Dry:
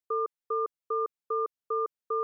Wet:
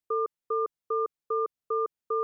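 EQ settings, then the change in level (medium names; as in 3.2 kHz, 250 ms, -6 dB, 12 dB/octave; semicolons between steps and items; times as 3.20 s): bass shelf 330 Hz +6 dB; 0.0 dB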